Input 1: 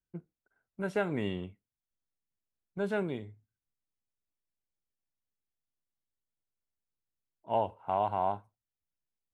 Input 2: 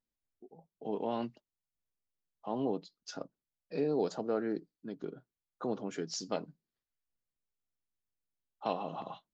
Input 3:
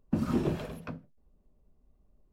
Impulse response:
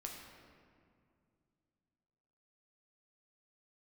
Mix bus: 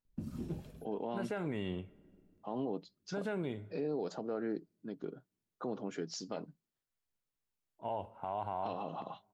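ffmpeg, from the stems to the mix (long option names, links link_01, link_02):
-filter_complex "[0:a]alimiter=level_in=2dB:limit=-24dB:level=0:latency=1:release=69,volume=-2dB,highpass=41,adelay=350,volume=-1.5dB,asplit=2[link_01][link_02];[link_02]volume=-16dB[link_03];[1:a]highshelf=frequency=4600:gain=-6,volume=-1dB,asplit=2[link_04][link_05];[2:a]equalizer=frequency=1100:width=0.34:gain=-14.5,adelay=50,volume=-8.5dB[link_06];[link_05]apad=whole_len=104927[link_07];[link_06][link_07]sidechaincompress=threshold=-43dB:ratio=8:attack=16:release=390[link_08];[3:a]atrim=start_sample=2205[link_09];[link_03][link_09]afir=irnorm=-1:irlink=0[link_10];[link_01][link_04][link_08][link_10]amix=inputs=4:normalize=0,alimiter=level_in=4dB:limit=-24dB:level=0:latency=1:release=44,volume=-4dB"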